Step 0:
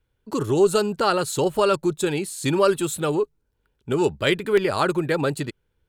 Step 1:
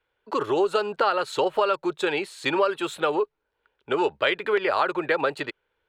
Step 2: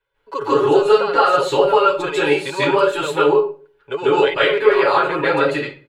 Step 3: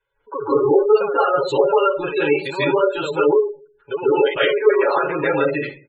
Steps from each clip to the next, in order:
three-way crossover with the lows and the highs turned down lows −22 dB, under 440 Hz, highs −23 dB, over 3,800 Hz; downward compressor 6 to 1, threshold −25 dBFS, peak gain reduction 9.5 dB; level +6.5 dB
comb filter 7.2 ms, depth 71%; convolution reverb RT60 0.40 s, pre-delay 139 ms, DRR −9 dB; level −4.5 dB
gate on every frequency bin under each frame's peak −20 dB strong; dynamic equaliser 1,100 Hz, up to −5 dB, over −29 dBFS, Q 1.2

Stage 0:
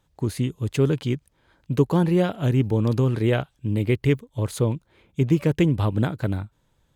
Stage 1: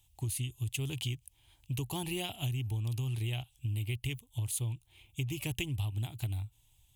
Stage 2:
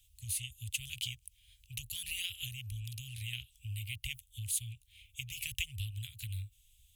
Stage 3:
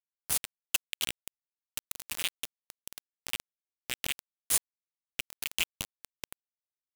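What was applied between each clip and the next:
drawn EQ curve 120 Hz 0 dB, 170 Hz −18 dB, 350 Hz −13 dB, 510 Hz −24 dB, 760 Hz −6 dB, 1,500 Hz −20 dB, 2,800 Hz +7 dB, 4,500 Hz −2 dB, 9,700 Hz +12 dB; downward compressor, threshold −32 dBFS, peak gain reduction 11.5 dB
tape wow and flutter 15 cents; inverse Chebyshev band-stop filter 260–720 Hz, stop band 70 dB; level +2 dB
bit reduction 5 bits; level +6.5 dB

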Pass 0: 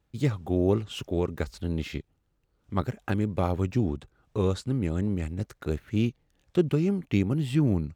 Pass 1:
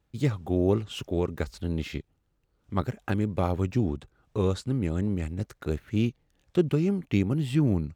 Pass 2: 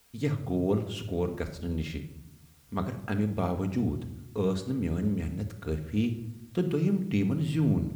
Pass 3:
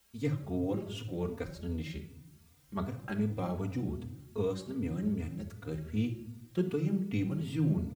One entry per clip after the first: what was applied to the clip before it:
no processing that can be heard
in parallel at −9 dB: bit-depth reduction 8 bits, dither triangular; on the sum: rectangular room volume 2,200 cubic metres, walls furnished, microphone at 1.7 metres; level −6.5 dB
barber-pole flanger 3.3 ms +2.6 Hz; level −2 dB

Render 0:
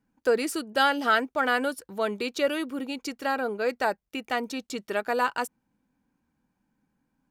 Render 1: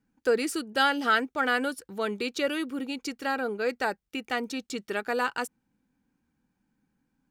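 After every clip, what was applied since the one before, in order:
thirty-one-band graphic EQ 630 Hz −7 dB, 1,000 Hz −5 dB, 12,500 Hz −4 dB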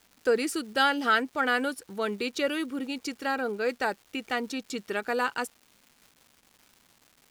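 surface crackle 490 per second −46 dBFS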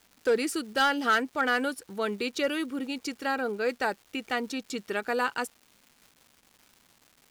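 gain into a clipping stage and back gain 17 dB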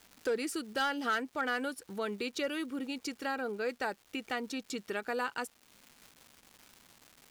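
downward compressor 1.5 to 1, threshold −48 dBFS, peak gain reduction 10 dB
level +2 dB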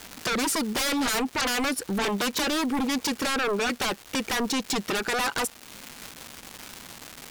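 sine wavefolder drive 15 dB, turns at −21.5 dBFS
level −1 dB

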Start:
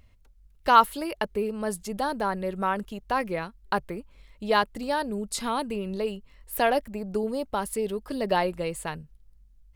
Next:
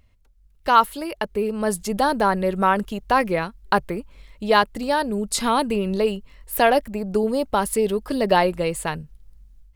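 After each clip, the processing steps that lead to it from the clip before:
automatic gain control gain up to 10 dB
level −1.5 dB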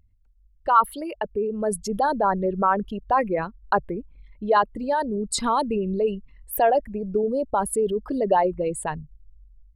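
spectral envelope exaggerated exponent 2
level −2 dB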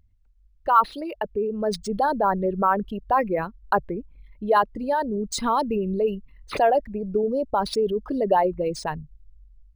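linearly interpolated sample-rate reduction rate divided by 3×

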